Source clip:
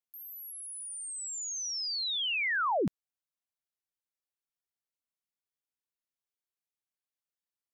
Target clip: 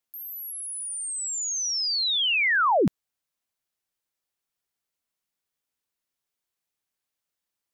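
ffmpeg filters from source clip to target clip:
-filter_complex "[0:a]asettb=1/sr,asplit=3[a][b][c];[a]atrim=end=1.324[d];[b]atrim=start=1.32:end=2.37,asetpts=PTS-STARTPTS,afade=t=in:d=0.004:c=qsin,afade=t=out:st=1.046:d=0.004:c=qsin,equalizer=f=100:w=4:g=14[e];[c]atrim=start=2.366[f];[d][e]acrossfade=d=0.004:c1=hsin:c2=qsin[g];[g][f]acrossfade=d=0.004:c1=qsin:c2=hsin,volume=8dB"

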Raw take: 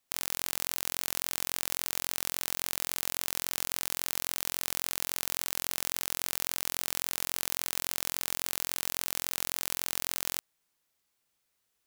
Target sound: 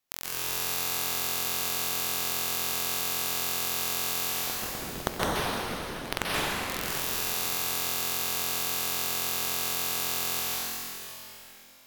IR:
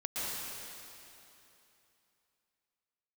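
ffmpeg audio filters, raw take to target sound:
-filter_complex "[0:a]equalizer=f=8.9k:w=3.5:g=-7,asplit=3[a][b][c];[a]afade=t=out:st=4.29:d=0.02[d];[b]acrusher=samples=29:mix=1:aa=0.000001:lfo=1:lforange=46.4:lforate=1.1,afade=t=in:st=4.29:d=0.02,afade=t=out:st=6.68:d=0.02[e];[c]afade=t=in:st=6.68:d=0.02[f];[d][e][f]amix=inputs=3:normalize=0[g];[1:a]atrim=start_sample=2205,asetrate=38808,aresample=44100[h];[g][h]afir=irnorm=-1:irlink=0"

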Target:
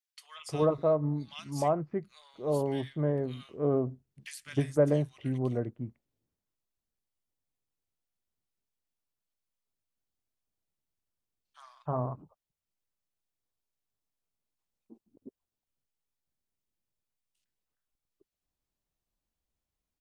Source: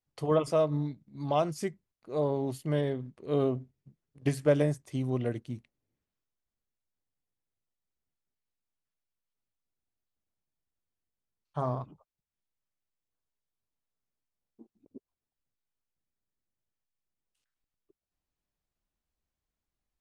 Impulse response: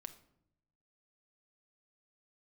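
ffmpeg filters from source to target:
-filter_complex "[0:a]acrossover=split=1700[a][b];[a]adelay=310[c];[c][b]amix=inputs=2:normalize=0"

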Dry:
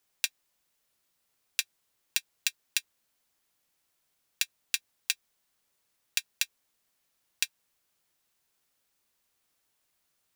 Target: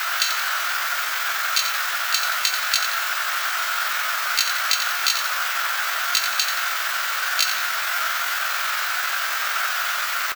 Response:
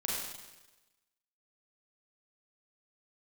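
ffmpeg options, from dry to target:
-filter_complex "[0:a]aeval=exprs='val(0)+0.5*0.0398*sgn(val(0))':c=same,highshelf=f=2.5k:g=-4.5,aeval=exprs='0.501*sin(PI/2*1.78*val(0)/0.501)':c=same,aeval=exprs='val(0)+0.00251*sin(2*PI*4700*n/s)':c=same,asetrate=74167,aresample=44100,atempo=0.594604,highpass=f=1.4k:t=q:w=5.3,acontrast=65,asplit=2[a][b];[b]asetrate=22050,aresample=44100,atempo=2,volume=-17dB[c];[a][c]amix=inputs=2:normalize=0,equalizer=f=10k:t=o:w=0.75:g=-11,asplit=2[d][e];[e]asplit=5[f][g][h][i][j];[f]adelay=88,afreqshift=-53,volume=-8dB[k];[g]adelay=176,afreqshift=-106,volume=-14.9dB[l];[h]adelay=264,afreqshift=-159,volume=-21.9dB[m];[i]adelay=352,afreqshift=-212,volume=-28.8dB[n];[j]adelay=440,afreqshift=-265,volume=-35.7dB[o];[k][l][m][n][o]amix=inputs=5:normalize=0[p];[d][p]amix=inputs=2:normalize=0,volume=-1.5dB"

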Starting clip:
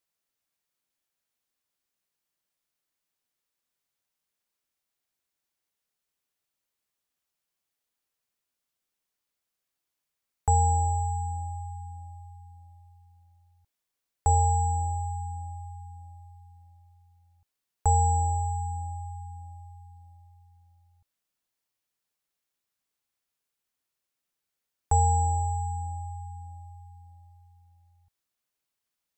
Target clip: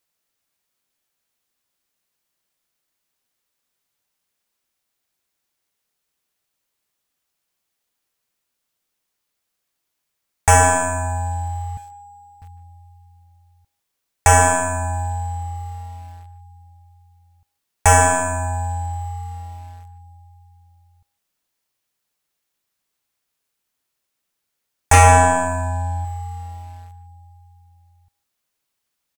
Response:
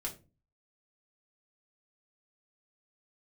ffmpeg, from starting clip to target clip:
-filter_complex "[0:a]asettb=1/sr,asplit=3[a][b][c];[a]atrim=end=11.774[d];[b]atrim=start=11.77:end=12.42,asetpts=PTS-STARTPTS,afade=t=in:d=0.004:c=qsin,afade=t=out:st=0.646:d=0.004:c=qsin,highpass=280[e];[c]atrim=start=12.416[f];[d][e]acrossfade=d=0.004:c1=hsin:c2=qsin[g];[g][f]acrossfade=d=0.004:c1=qsin:c2=hsin,asettb=1/sr,asplit=3[h][i][j];[h]atrim=end=24.934[k];[i]atrim=start=24.93:end=26.05,asetpts=PTS-STARTPTS,afade=t=in:d=0.004:c=qsin,afade=t=out:st=1.116:d=0.004:c=qsin,aecho=1:1:1.5:0.53,atrim=end_sample=49392[l];[j]atrim=start=26.046[m];[k][l]acrossfade=d=0.004:c1=hsin:c2=qsin[n];[n][m]acrossfade=d=0.004:c1=qsin:c2=hsin,aeval=exprs='0.316*(cos(1*acos(clip(val(0)/0.316,-1,1)))-cos(1*PI/2))+0.0631*(cos(5*acos(clip(val(0)/0.316,-1,1)))-cos(5*PI/2))+0.02*(cos(6*acos(clip(val(0)/0.316,-1,1)))-cos(6*PI/2))+0.158*(cos(7*acos(clip(val(0)/0.316,-1,1)))-cos(7*PI/2))':c=same,asplit=2[o][p];[p]aeval=exprs='val(0)*gte(abs(val(0)),0.0106)':c=same,volume=-9dB[q];[o][q]amix=inputs=2:normalize=0,asplit=2[r][s];[s]adelay=150,highpass=300,lowpass=3.4k,asoftclip=type=hard:threshold=-15dB,volume=-15dB[t];[r][t]amix=inputs=2:normalize=0,volume=4dB"

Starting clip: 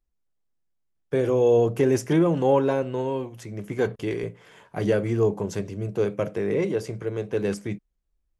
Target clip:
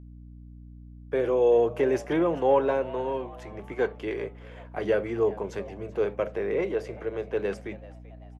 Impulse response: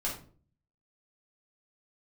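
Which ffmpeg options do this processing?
-filter_complex "[0:a]acrossover=split=330 3500:gain=0.178 1 0.2[a][b][c];[a][b][c]amix=inputs=3:normalize=0,asplit=4[d][e][f][g];[e]adelay=386,afreqshift=110,volume=-20dB[h];[f]adelay=772,afreqshift=220,volume=-26.9dB[i];[g]adelay=1158,afreqshift=330,volume=-33.9dB[j];[d][h][i][j]amix=inputs=4:normalize=0,aeval=exprs='val(0)+0.00631*(sin(2*PI*60*n/s)+sin(2*PI*2*60*n/s)/2+sin(2*PI*3*60*n/s)/3+sin(2*PI*4*60*n/s)/4+sin(2*PI*5*60*n/s)/5)':c=same"

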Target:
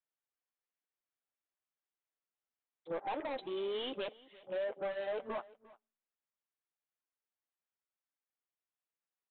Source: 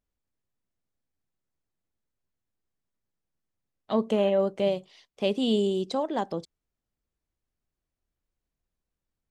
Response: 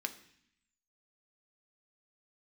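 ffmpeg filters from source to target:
-filter_complex "[0:a]areverse,acompressor=threshold=-33dB:ratio=6,highpass=f=1.1k:p=1,asplit=2[a][b];[b]highpass=f=720:p=1,volume=11dB,asoftclip=type=tanh:threshold=-30dB[c];[a][c]amix=inputs=2:normalize=0,lowpass=f=1.4k:p=1,volume=-6dB,acontrast=57,afwtdn=0.00355,aresample=8000,asoftclip=type=tanh:threshold=-37.5dB,aresample=44100,flanger=delay=5.6:depth=3.4:regen=-32:speed=1:shape=triangular,aecho=1:1:350:0.0891,asplit=2[d][e];[1:a]atrim=start_sample=2205,asetrate=52920,aresample=44100[f];[e][f]afir=irnorm=-1:irlink=0,volume=-18dB[g];[d][g]amix=inputs=2:normalize=0,volume=7dB"

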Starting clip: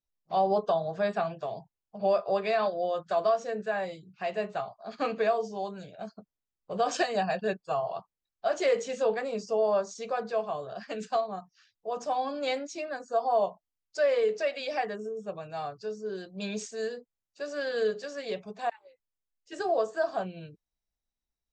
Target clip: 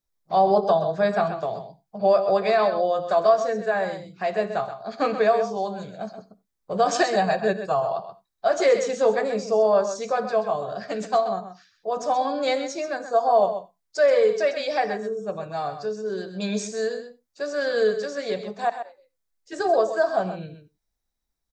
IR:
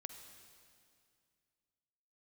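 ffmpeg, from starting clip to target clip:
-filter_complex "[0:a]equalizer=f=2.8k:t=o:w=0.32:g=-8,aecho=1:1:129:0.316,asplit=2[a][b];[1:a]atrim=start_sample=2205,atrim=end_sample=4410[c];[b][c]afir=irnorm=-1:irlink=0,volume=6.5dB[d];[a][d]amix=inputs=2:normalize=0"

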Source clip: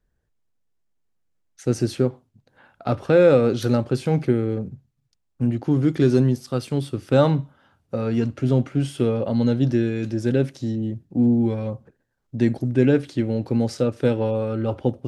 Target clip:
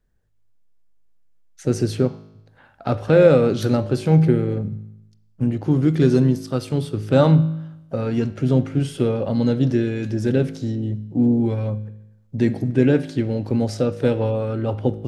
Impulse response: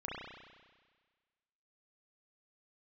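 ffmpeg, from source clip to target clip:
-filter_complex "[0:a]asplit=2[a][b];[b]asetrate=52444,aresample=44100,atempo=0.840896,volume=-18dB[c];[a][c]amix=inputs=2:normalize=0,asplit=2[d][e];[e]bass=f=250:g=14,treble=f=4k:g=1[f];[1:a]atrim=start_sample=2205,asetrate=74970,aresample=44100[g];[f][g]afir=irnorm=-1:irlink=0,volume=-10dB[h];[d][h]amix=inputs=2:normalize=0"

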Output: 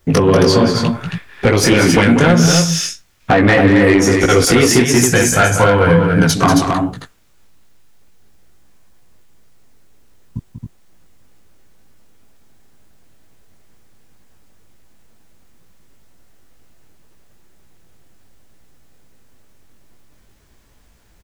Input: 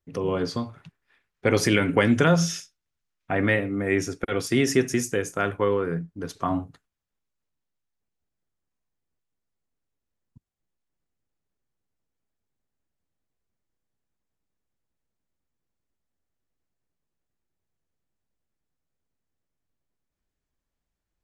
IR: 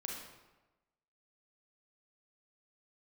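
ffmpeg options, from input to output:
-filter_complex "[0:a]asettb=1/sr,asplit=3[a][b][c];[a]atrim=end=4.984[d];[b]atrim=start=4.98:end=6.33,asetpts=PTS-STARTPTS,afade=t=in:d=0.004:c=qsin,afade=t=out:st=1.346:d=0.004:c=qsin,aecho=1:1:1.3:0.72,atrim=end_sample=59535[e];[c]atrim=start=6.326[f];[d][e]acrossfade=d=0.004:c1=hsin:c2=qsin[g];[g][f]acrossfade=d=0.004:c1=qsin:c2=hsin,acompressor=threshold=-34dB:ratio=12,flanger=delay=16:depth=6.1:speed=2.1,asoftclip=type=tanh:threshold=-36.5dB,aecho=1:1:189.5|271.1:0.398|0.562,alimiter=level_in=32.5dB:limit=-1dB:release=50:level=0:latency=1,volume=-1dB"

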